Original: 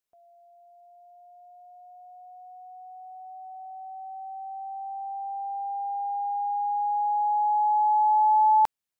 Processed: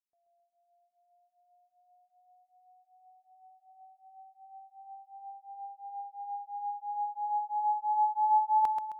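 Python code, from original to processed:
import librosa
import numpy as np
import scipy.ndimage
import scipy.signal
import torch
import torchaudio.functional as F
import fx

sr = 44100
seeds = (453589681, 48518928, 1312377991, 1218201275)

p1 = x + fx.echo_feedback(x, sr, ms=132, feedback_pct=57, wet_db=-4, dry=0)
p2 = fx.upward_expand(p1, sr, threshold_db=-40.0, expansion=1.5)
y = F.gain(torch.from_numpy(p2), -7.0).numpy()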